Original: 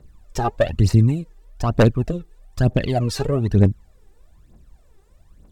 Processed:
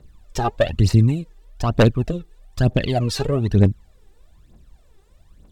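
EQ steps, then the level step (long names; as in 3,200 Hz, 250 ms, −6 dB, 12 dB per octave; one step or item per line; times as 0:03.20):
parametric band 3,400 Hz +5 dB 0.97 octaves
0.0 dB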